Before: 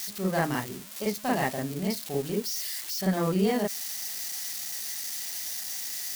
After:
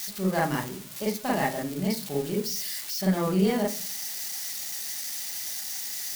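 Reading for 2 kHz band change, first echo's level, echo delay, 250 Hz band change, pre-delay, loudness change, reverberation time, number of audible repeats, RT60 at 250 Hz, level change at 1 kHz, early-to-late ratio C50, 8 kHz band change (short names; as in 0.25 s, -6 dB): +0.5 dB, none, none, +2.0 dB, 3 ms, +1.0 dB, 0.45 s, none, 0.65 s, +1.5 dB, 15.5 dB, +1.0 dB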